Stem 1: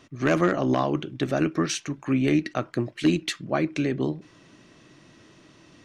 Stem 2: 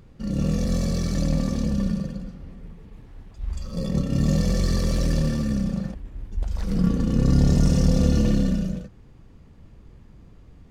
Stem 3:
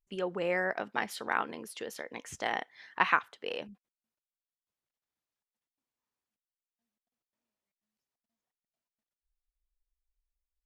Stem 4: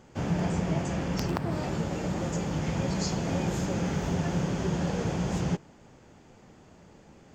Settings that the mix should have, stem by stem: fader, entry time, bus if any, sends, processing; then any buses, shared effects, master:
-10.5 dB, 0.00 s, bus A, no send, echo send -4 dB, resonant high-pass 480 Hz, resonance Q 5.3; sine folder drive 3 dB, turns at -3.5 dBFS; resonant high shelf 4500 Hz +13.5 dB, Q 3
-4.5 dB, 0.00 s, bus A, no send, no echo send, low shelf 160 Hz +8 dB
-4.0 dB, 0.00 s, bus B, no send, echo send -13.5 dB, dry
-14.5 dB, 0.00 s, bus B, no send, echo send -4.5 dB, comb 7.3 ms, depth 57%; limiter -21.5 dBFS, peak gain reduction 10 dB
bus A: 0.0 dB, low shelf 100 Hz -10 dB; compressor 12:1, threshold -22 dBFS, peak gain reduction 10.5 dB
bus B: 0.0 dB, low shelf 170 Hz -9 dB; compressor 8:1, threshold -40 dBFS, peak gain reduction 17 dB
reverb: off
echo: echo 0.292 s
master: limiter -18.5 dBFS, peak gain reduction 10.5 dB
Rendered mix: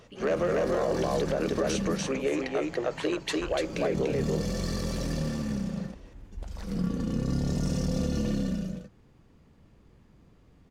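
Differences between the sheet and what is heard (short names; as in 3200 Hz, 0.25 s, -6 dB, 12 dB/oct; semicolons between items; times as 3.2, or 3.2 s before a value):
stem 1: missing resonant high shelf 4500 Hz +13.5 dB, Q 3; stem 2: missing low shelf 160 Hz +8 dB; stem 4: missing limiter -21.5 dBFS, peak gain reduction 10 dB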